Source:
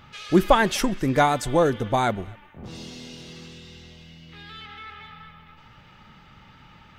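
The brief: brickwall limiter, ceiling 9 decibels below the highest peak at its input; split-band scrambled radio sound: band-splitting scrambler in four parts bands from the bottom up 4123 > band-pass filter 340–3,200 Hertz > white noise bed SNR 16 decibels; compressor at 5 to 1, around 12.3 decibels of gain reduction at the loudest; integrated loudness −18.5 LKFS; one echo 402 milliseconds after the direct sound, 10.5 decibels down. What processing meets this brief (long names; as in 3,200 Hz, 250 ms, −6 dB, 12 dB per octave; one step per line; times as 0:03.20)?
downward compressor 5 to 1, threshold −26 dBFS
brickwall limiter −25 dBFS
single-tap delay 402 ms −10.5 dB
band-splitting scrambler in four parts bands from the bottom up 4123
band-pass filter 340–3,200 Hz
white noise bed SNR 16 dB
level +17 dB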